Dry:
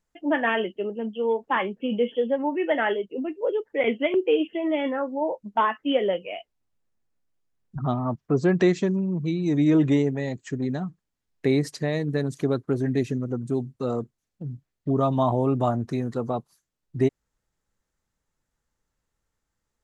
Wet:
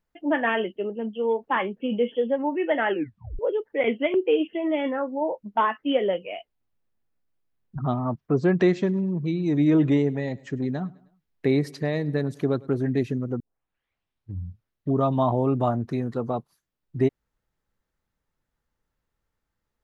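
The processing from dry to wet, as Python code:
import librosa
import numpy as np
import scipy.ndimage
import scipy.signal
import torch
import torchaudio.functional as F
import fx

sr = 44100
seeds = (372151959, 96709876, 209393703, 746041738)

y = fx.echo_feedback(x, sr, ms=104, feedback_pct=48, wet_db=-23.0, at=(8.71, 12.82), fade=0.02)
y = fx.edit(y, sr, fx.tape_stop(start_s=2.9, length_s=0.49),
    fx.tape_start(start_s=13.4, length_s=1.49), tone=tone)
y = fx.peak_eq(y, sr, hz=7400.0, db=-10.0, octaves=1.0)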